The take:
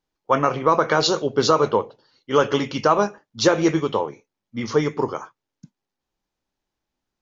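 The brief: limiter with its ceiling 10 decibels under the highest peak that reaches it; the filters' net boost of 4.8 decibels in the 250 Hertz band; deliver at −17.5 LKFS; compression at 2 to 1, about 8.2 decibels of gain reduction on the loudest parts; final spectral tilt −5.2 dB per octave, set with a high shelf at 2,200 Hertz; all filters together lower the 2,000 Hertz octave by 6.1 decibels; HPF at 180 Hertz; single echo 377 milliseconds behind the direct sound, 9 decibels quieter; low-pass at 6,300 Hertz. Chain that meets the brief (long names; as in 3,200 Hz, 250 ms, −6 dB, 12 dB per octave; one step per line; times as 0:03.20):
high-pass filter 180 Hz
low-pass filter 6,300 Hz
parametric band 250 Hz +8 dB
parametric band 2,000 Hz −5 dB
high-shelf EQ 2,200 Hz −8 dB
downward compressor 2 to 1, threshold −25 dBFS
brickwall limiter −21 dBFS
single-tap delay 377 ms −9 dB
level +13.5 dB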